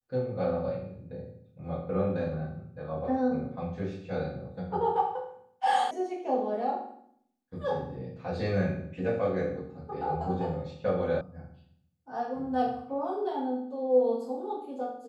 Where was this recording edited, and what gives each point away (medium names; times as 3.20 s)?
5.91 s: sound stops dead
11.21 s: sound stops dead